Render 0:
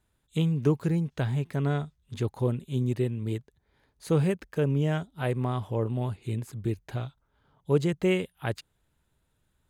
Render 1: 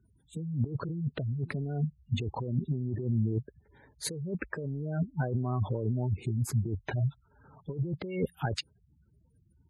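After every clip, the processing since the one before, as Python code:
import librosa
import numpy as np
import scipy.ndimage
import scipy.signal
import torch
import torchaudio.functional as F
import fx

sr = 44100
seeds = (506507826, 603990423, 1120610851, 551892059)

y = fx.spec_gate(x, sr, threshold_db=-15, keep='strong')
y = scipy.signal.sosfilt(scipy.signal.butter(4, 56.0, 'highpass', fs=sr, output='sos'), y)
y = fx.over_compress(y, sr, threshold_db=-35.0, ratio=-1.0)
y = F.gain(torch.from_numpy(y), 3.5).numpy()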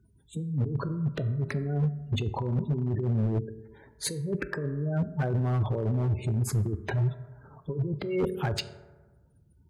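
y = fx.rev_fdn(x, sr, rt60_s=1.3, lf_ratio=0.85, hf_ratio=0.35, size_ms=15.0, drr_db=10.0)
y = np.clip(y, -10.0 ** (-25.5 / 20.0), 10.0 ** (-25.5 / 20.0))
y = F.gain(torch.from_numpy(y), 3.5).numpy()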